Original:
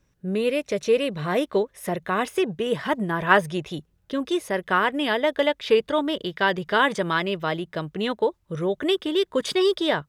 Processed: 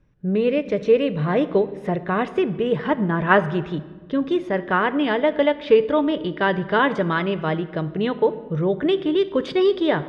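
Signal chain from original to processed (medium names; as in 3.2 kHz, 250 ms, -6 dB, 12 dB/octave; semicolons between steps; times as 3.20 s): low-pass 2.9 kHz 12 dB/octave; bass shelf 430 Hz +6.5 dB; simulated room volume 1100 m³, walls mixed, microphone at 0.41 m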